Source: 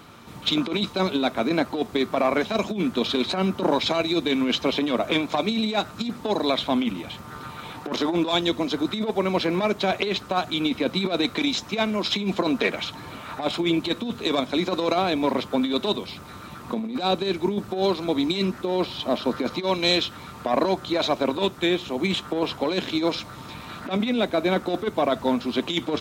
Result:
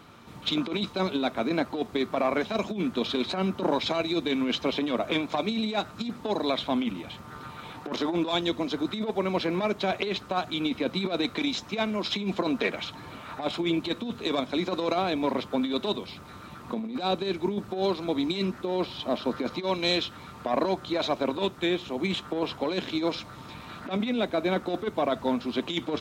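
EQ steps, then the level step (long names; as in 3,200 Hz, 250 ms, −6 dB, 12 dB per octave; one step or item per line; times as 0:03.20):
high-shelf EQ 6,400 Hz −5 dB
−4.0 dB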